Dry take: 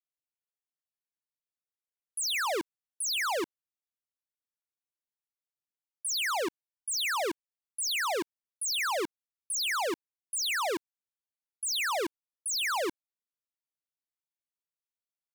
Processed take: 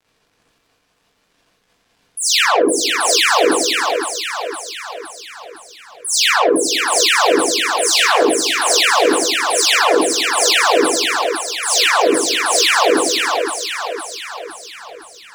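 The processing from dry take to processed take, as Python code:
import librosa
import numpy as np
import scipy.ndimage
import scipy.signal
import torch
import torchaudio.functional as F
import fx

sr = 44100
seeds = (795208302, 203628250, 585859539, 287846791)

p1 = fx.bin_expand(x, sr, power=1.5)
p2 = scipy.signal.sosfilt(scipy.signal.butter(2, 260.0, 'highpass', fs=sr, output='sos'), p1)
p3 = fx.dmg_crackle(p2, sr, seeds[0], per_s=79.0, level_db=-63.0)
p4 = fx.high_shelf(p3, sr, hz=6000.0, db=-10.5)
p5 = fx.fold_sine(p4, sr, drive_db=9, ceiling_db=-25.0)
p6 = p4 + F.gain(torch.from_numpy(p5), -6.0).numpy()
p7 = fx.spec_gate(p6, sr, threshold_db=-20, keep='strong')
p8 = 10.0 ** (-27.5 / 20.0) * np.tanh(p7 / 10.0 ** (-27.5 / 20.0))
p9 = fx.echo_split(p8, sr, split_hz=440.0, low_ms=103, high_ms=512, feedback_pct=52, wet_db=-4)
p10 = fx.rev_gated(p9, sr, seeds[1], gate_ms=100, shape='rising', drr_db=-7.0)
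p11 = fx.sustainer(p10, sr, db_per_s=44.0)
y = F.gain(torch.from_numpy(p11), 8.5).numpy()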